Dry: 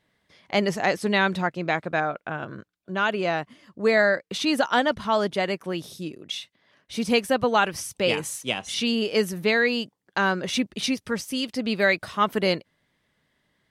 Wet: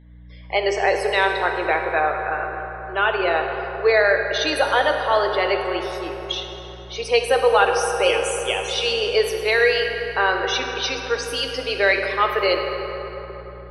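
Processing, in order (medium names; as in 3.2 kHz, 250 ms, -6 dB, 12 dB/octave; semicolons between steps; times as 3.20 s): steep high-pass 350 Hz 48 dB/octave; in parallel at -2 dB: peak limiter -18.5 dBFS, peak gain reduction 10.5 dB; on the sum: loudest bins only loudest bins 64; hum 60 Hz, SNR 24 dB; on a send at -2.5 dB: reverberation RT60 4.0 s, pre-delay 3 ms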